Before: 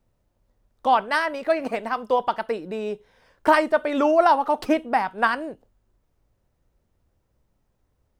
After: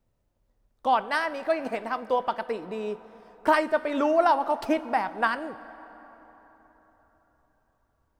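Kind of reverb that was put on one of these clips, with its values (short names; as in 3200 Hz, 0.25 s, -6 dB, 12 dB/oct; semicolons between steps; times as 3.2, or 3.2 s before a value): plate-style reverb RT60 4.3 s, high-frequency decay 0.55×, DRR 15 dB; gain -4 dB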